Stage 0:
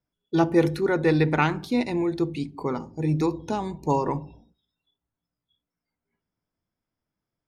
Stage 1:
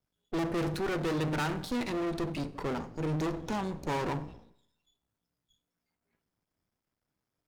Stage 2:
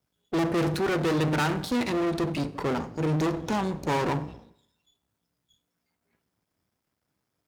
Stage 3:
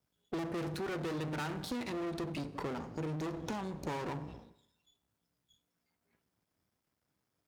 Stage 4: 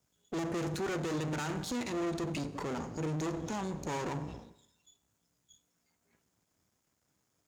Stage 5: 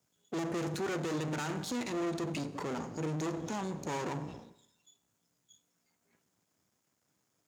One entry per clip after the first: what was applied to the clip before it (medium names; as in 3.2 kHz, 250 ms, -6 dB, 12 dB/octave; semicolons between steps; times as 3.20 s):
half-wave rectifier; valve stage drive 23 dB, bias 0.6; Schroeder reverb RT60 0.85 s, combs from 30 ms, DRR 18 dB; trim +7.5 dB
high-pass 55 Hz; trim +6 dB
compression, threshold -32 dBFS, peak gain reduction 9.5 dB; trim -3.5 dB
peaking EQ 6.8 kHz +11 dB 0.38 oct; peak limiter -31.5 dBFS, peak gain reduction 9.5 dB; trim +4 dB
high-pass 110 Hz 12 dB/octave